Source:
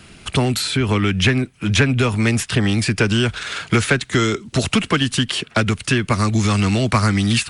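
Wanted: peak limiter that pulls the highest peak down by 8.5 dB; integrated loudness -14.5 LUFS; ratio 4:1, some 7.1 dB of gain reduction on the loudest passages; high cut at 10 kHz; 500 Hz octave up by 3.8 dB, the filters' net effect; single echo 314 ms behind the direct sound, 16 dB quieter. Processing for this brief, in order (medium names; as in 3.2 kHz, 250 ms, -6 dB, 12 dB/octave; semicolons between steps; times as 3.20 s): low-pass 10 kHz; peaking EQ 500 Hz +5 dB; compression 4:1, threshold -19 dBFS; peak limiter -15 dBFS; delay 314 ms -16 dB; trim +10 dB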